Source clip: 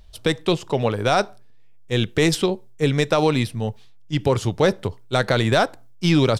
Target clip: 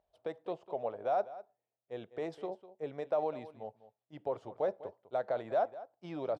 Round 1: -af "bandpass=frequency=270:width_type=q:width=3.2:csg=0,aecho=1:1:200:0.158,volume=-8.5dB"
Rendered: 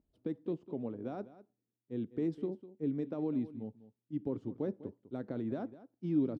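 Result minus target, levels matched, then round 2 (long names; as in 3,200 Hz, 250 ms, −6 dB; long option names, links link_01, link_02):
250 Hz band +13.5 dB
-af "bandpass=frequency=660:width_type=q:width=3.2:csg=0,aecho=1:1:200:0.158,volume=-8.5dB"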